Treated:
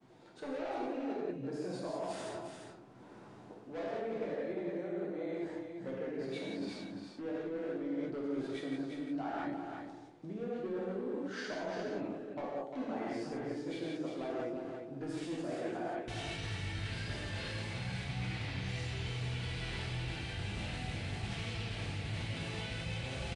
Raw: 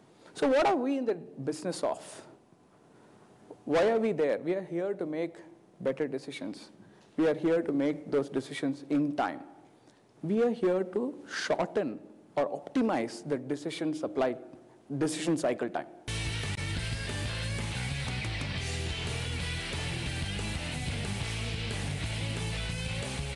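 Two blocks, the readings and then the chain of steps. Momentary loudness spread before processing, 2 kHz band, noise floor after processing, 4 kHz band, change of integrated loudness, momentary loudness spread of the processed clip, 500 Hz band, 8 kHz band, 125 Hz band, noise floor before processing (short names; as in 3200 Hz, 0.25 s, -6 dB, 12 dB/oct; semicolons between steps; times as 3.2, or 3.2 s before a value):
10 LU, -6.5 dB, -54 dBFS, -7.0 dB, -7.5 dB, 5 LU, -8.5 dB, -11.5 dB, -4.5 dB, -59 dBFS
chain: vibrato 4.9 Hz 6.6 cents; expander -54 dBFS; non-linear reverb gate 0.21 s flat, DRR -6 dB; reverse; compressor 6:1, threshold -36 dBFS, peak gain reduction 20.5 dB; reverse; air absorption 76 m; on a send: echo 0.349 s -6.5 dB; on the sum: gain -1.5 dB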